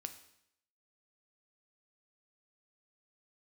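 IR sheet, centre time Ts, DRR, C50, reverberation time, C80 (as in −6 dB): 9 ms, 7.5 dB, 12.0 dB, 0.75 s, 14.5 dB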